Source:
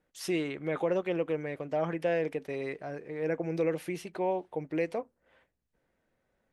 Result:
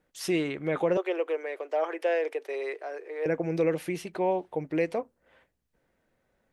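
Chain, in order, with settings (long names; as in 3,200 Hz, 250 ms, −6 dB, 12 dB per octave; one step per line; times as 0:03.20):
0:00.97–0:03.26: elliptic high-pass filter 370 Hz, stop band 60 dB
level +3.5 dB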